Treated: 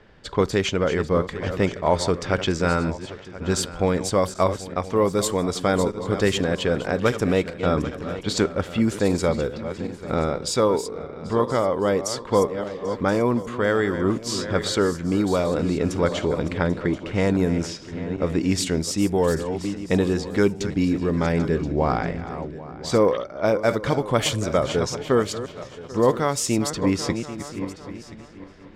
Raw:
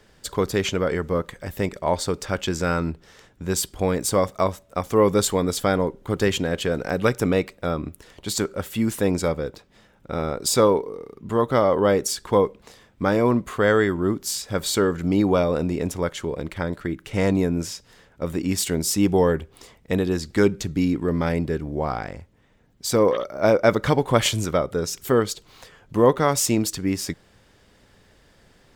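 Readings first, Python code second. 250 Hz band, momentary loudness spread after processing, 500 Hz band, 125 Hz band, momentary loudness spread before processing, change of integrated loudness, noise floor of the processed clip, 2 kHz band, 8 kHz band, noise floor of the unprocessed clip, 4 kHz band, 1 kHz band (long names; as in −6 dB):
+0.5 dB, 10 LU, 0.0 dB, +0.5 dB, 11 LU, −0.5 dB, −41 dBFS, 0.0 dB, −3.0 dB, −57 dBFS, 0.0 dB, 0.0 dB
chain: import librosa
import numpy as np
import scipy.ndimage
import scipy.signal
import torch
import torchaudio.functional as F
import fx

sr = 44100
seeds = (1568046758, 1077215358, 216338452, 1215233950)

p1 = fx.reverse_delay_fb(x, sr, ms=395, feedback_pct=50, wet_db=-12)
p2 = fx.env_lowpass(p1, sr, base_hz=2800.0, full_db=-14.0)
p3 = fx.rider(p2, sr, range_db=4, speed_s=0.5)
y = p3 + fx.echo_single(p3, sr, ms=1027, db=-17.5, dry=0)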